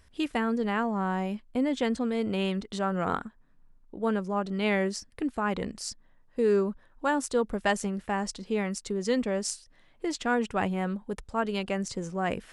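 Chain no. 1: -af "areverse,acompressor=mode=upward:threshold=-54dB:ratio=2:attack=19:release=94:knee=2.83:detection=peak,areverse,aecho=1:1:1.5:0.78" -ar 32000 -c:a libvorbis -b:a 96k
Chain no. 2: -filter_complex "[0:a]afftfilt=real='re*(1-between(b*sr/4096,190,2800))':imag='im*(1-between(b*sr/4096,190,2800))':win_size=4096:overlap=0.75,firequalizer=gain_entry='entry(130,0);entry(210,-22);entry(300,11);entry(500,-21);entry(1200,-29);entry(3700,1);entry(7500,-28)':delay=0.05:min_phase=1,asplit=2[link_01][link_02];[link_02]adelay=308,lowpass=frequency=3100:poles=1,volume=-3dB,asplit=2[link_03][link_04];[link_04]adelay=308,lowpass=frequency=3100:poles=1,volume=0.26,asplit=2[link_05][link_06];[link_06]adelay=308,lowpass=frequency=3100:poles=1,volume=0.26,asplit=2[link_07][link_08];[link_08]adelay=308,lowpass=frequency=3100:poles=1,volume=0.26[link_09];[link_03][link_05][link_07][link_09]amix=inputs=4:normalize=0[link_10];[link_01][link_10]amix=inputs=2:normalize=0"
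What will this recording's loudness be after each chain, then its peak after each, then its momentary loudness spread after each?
−29.0, −49.0 LKFS; −12.0, −30.0 dBFS; 8, 10 LU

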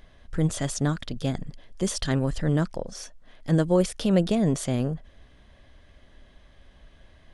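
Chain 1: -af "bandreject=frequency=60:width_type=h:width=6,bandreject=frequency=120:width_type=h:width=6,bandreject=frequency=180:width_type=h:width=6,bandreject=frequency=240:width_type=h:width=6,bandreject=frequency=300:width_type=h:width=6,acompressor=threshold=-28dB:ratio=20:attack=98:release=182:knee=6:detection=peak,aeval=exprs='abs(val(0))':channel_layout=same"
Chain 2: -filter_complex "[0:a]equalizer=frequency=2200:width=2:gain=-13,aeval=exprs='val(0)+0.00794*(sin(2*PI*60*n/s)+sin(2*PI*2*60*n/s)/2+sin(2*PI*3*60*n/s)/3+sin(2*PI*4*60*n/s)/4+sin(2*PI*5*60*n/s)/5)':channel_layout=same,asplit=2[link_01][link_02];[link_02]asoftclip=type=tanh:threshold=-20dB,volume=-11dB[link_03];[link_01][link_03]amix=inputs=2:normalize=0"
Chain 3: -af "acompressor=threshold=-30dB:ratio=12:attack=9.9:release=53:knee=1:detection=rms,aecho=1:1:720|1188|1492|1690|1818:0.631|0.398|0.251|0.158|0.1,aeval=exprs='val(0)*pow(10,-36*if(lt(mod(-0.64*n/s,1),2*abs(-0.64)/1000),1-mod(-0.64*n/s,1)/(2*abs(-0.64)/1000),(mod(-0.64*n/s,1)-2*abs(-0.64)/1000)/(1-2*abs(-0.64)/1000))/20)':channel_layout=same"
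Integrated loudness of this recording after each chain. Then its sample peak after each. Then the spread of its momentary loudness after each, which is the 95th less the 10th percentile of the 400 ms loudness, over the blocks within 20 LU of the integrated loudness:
−35.0, −25.0, −42.0 LKFS; −14.5, −8.0, −22.0 dBFS; 10, 22, 20 LU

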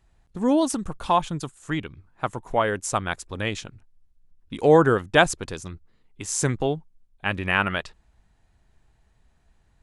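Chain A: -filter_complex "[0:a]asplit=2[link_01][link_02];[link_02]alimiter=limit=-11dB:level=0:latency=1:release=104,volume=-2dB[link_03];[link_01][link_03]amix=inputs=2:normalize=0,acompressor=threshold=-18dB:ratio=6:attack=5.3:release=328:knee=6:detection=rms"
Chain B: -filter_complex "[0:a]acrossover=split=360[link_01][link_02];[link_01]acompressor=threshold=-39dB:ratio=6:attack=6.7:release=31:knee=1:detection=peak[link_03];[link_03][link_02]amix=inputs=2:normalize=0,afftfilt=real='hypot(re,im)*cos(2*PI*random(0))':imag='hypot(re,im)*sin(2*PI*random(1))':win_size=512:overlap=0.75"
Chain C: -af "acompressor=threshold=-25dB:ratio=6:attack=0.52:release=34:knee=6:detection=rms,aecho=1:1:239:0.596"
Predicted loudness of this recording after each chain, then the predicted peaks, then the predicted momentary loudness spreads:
−27.5, −31.5, −32.5 LKFS; −8.5, −9.0, −17.5 dBFS; 10, 18, 11 LU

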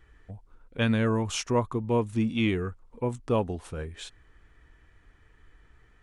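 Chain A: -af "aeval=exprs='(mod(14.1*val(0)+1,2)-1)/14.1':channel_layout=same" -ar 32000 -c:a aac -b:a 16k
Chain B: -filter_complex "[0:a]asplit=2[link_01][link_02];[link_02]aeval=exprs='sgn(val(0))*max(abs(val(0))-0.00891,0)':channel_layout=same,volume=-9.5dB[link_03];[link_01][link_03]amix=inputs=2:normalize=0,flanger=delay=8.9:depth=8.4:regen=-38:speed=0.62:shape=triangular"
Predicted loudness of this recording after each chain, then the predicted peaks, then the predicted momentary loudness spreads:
−30.5, −30.5 LKFS; −16.5, −15.5 dBFS; 19, 13 LU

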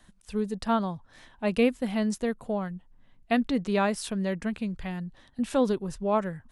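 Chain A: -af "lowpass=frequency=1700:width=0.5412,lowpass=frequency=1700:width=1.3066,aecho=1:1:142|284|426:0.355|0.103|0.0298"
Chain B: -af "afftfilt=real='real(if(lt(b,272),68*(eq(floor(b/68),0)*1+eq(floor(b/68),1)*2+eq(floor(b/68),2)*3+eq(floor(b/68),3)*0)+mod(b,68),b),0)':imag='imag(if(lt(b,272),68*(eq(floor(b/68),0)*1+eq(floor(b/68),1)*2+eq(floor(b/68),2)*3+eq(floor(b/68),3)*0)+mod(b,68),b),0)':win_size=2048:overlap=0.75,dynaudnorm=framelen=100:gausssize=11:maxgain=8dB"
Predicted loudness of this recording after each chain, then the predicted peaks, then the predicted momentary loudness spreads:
−29.0, −18.0 LKFS; −12.5, −4.0 dBFS; 11, 11 LU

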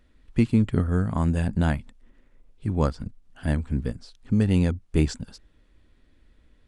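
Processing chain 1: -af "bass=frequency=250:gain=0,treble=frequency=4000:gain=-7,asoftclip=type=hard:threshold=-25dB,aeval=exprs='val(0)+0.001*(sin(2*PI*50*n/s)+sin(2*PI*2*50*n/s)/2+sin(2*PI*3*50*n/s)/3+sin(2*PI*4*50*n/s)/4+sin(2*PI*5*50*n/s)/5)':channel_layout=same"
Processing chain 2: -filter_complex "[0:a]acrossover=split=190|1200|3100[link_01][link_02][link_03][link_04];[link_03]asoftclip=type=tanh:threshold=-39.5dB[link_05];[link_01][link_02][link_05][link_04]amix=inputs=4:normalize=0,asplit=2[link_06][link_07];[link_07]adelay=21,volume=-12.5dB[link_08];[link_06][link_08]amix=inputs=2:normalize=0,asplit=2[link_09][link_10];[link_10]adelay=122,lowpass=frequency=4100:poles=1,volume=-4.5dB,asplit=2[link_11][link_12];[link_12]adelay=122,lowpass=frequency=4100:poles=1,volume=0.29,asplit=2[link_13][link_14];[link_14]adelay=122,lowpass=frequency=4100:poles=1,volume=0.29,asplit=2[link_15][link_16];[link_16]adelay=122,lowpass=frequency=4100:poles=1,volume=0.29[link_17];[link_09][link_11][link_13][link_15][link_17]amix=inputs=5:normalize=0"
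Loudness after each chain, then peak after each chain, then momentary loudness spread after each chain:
−31.5, −24.5 LKFS; −25.0, −6.0 dBFS; 11, 14 LU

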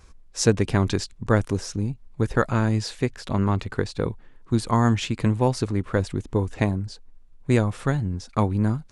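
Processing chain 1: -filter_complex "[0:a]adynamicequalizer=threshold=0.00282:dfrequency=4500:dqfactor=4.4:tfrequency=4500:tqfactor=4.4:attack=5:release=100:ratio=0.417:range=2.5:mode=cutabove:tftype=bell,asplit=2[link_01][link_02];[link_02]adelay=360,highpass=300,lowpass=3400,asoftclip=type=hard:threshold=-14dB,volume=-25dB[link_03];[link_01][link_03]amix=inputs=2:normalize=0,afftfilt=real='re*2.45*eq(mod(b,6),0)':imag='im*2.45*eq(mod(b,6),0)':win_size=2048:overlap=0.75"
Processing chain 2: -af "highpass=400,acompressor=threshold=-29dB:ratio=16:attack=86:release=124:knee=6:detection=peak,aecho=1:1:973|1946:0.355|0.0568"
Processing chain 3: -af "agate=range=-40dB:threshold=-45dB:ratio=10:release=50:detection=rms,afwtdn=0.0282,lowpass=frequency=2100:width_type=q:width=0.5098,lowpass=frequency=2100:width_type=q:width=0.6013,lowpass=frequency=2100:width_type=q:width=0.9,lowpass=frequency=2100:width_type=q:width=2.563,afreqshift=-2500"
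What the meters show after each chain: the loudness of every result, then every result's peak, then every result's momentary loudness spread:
−27.0, −31.5, −21.0 LKFS; −4.5, −8.5, −3.0 dBFS; 10, 9, 8 LU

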